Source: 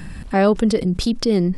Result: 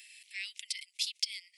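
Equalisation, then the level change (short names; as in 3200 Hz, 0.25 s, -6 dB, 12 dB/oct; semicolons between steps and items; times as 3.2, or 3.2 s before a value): Chebyshev high-pass 2100 Hz, order 6; -4.0 dB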